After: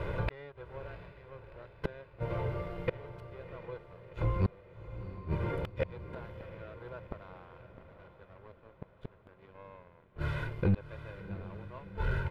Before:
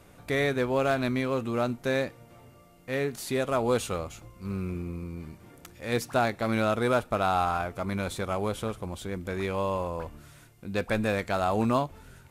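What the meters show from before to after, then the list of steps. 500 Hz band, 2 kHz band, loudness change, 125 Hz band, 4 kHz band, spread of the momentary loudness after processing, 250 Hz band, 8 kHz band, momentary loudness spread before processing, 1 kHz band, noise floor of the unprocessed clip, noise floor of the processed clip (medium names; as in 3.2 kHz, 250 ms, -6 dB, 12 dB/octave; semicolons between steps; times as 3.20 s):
-12.5 dB, -12.0 dB, -9.5 dB, -2.0 dB, -16.5 dB, 20 LU, -11.5 dB, under -30 dB, 12 LU, -15.5 dB, -55 dBFS, -61 dBFS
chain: comb 2 ms, depth 88%; inverted gate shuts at -27 dBFS, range -38 dB; waveshaping leveller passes 3; distance through air 420 m; echo that smears into a reverb 711 ms, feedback 55%, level -12 dB; trim +5.5 dB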